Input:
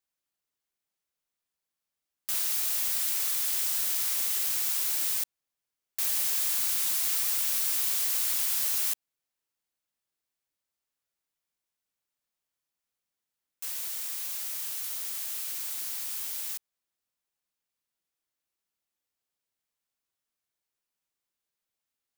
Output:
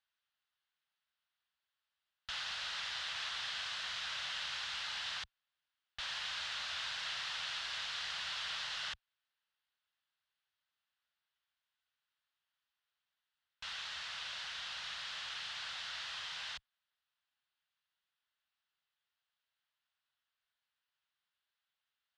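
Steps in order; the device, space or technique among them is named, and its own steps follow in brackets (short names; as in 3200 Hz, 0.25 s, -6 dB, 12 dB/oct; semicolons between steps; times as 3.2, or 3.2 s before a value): scooped metal amplifier (tube stage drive 35 dB, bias 0.75; speaker cabinet 79–3500 Hz, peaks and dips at 100 Hz -7 dB, 270 Hz -5 dB, 450 Hz -4 dB, 1500 Hz +3 dB, 2300 Hz -7 dB; passive tone stack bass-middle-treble 10-0-10); gain +15 dB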